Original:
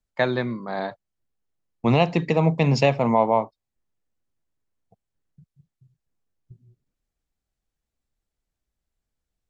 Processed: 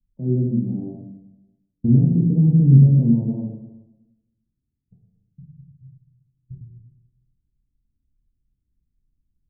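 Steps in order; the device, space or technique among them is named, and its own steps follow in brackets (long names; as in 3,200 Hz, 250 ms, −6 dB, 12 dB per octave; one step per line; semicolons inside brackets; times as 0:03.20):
club heard from the street (brickwall limiter −14.5 dBFS, peak gain reduction 9 dB; low-pass filter 250 Hz 24 dB per octave; convolution reverb RT60 1.0 s, pre-delay 17 ms, DRR −2 dB)
level +8 dB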